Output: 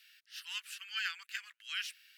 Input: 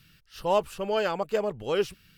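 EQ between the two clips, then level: steep high-pass 1600 Hz 48 dB/oct; tilt -1.5 dB/oct; +2.5 dB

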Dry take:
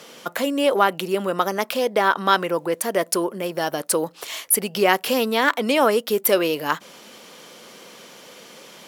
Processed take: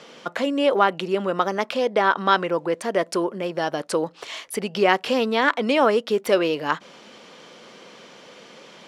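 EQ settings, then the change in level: air absorption 100 m; 0.0 dB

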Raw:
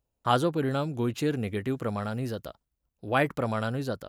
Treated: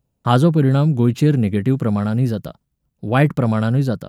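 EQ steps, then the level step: bell 160 Hz +13.5 dB 1.5 oct; +5.0 dB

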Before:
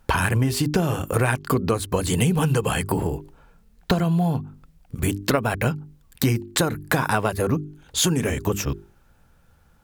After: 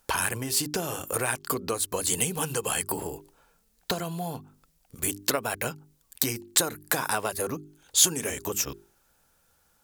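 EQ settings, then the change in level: tone controls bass -11 dB, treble +11 dB; -6.0 dB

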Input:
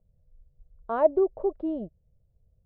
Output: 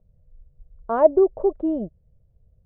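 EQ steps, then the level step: LPF 1800 Hz 6 dB/oct; air absorption 200 m; +7.0 dB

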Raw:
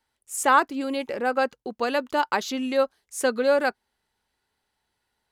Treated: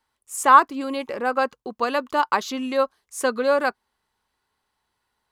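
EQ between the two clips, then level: bell 1100 Hz +9.5 dB 0.36 oct; 0.0 dB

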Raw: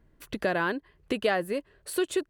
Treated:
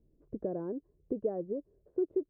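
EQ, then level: ladder low-pass 570 Hz, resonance 30%; 0.0 dB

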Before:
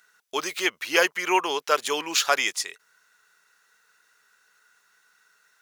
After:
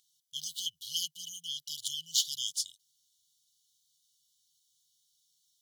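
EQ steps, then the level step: brick-wall FIR band-stop 170–2900 Hz; -4.0 dB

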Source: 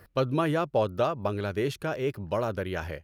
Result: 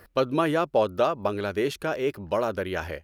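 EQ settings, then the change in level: bell 120 Hz -11.5 dB 0.81 oct; +3.5 dB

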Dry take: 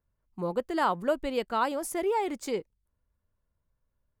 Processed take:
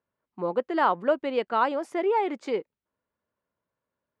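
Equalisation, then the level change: BPF 260–2900 Hz; +4.0 dB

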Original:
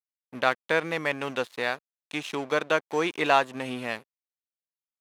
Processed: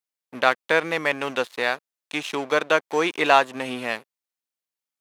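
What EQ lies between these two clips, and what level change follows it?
HPF 240 Hz 6 dB/oct; +5.0 dB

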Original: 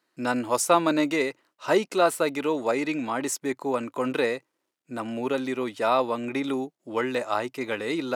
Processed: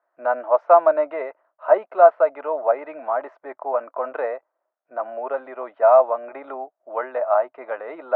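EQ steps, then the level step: resonant high-pass 640 Hz, resonance Q 7.3; synth low-pass 1400 Hz, resonance Q 1.9; air absorption 300 m; -4.0 dB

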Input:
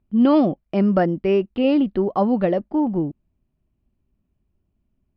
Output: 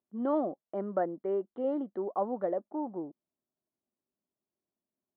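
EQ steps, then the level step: running mean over 17 samples; HPF 470 Hz 12 dB/oct; air absorption 320 m; -6.5 dB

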